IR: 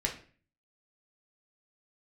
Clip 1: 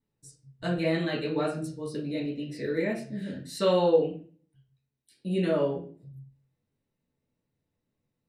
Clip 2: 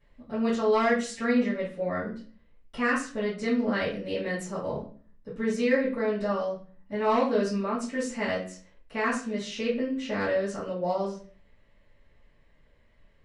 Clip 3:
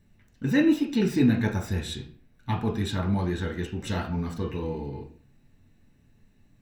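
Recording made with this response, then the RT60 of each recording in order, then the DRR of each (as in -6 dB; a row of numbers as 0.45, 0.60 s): 3; 0.40, 0.40, 0.40 s; -5.5, -15.0, 0.0 dB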